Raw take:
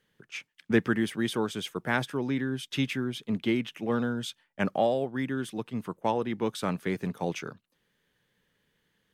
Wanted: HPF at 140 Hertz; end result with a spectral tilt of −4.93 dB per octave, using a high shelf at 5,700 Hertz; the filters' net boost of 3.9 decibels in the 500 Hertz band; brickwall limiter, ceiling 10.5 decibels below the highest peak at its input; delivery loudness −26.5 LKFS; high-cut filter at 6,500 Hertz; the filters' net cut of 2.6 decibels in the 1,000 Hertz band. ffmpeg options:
ffmpeg -i in.wav -af "highpass=140,lowpass=6500,equalizer=frequency=500:width_type=o:gain=6.5,equalizer=frequency=1000:width_type=o:gain=-6.5,highshelf=frequency=5700:gain=-5,volume=5dB,alimiter=limit=-14.5dB:level=0:latency=1" out.wav

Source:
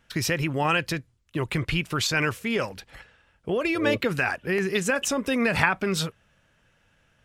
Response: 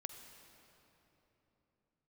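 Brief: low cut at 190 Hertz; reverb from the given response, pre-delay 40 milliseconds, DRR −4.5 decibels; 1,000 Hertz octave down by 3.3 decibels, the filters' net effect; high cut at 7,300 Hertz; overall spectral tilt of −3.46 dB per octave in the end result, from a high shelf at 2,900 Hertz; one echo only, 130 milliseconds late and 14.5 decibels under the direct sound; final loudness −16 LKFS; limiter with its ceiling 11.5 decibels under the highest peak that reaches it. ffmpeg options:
-filter_complex "[0:a]highpass=190,lowpass=7300,equalizer=frequency=1000:width_type=o:gain=-5,highshelf=frequency=2900:gain=4,alimiter=limit=-15.5dB:level=0:latency=1,aecho=1:1:130:0.188,asplit=2[link_01][link_02];[1:a]atrim=start_sample=2205,adelay=40[link_03];[link_02][link_03]afir=irnorm=-1:irlink=0,volume=8dB[link_04];[link_01][link_04]amix=inputs=2:normalize=0,volume=5.5dB"

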